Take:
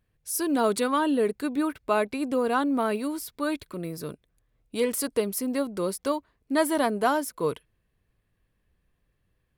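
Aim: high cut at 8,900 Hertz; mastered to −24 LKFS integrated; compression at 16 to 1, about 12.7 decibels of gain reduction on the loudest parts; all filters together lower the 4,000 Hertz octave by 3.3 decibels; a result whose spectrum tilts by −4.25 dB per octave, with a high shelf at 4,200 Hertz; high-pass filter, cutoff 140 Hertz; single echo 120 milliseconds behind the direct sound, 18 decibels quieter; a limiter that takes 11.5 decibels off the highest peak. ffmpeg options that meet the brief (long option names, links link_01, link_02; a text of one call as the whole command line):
ffmpeg -i in.wav -af "highpass=140,lowpass=8900,equalizer=frequency=4000:width_type=o:gain=-7,highshelf=frequency=4200:gain=5,acompressor=threshold=-31dB:ratio=16,alimiter=level_in=8.5dB:limit=-24dB:level=0:latency=1,volume=-8.5dB,aecho=1:1:120:0.126,volume=17dB" out.wav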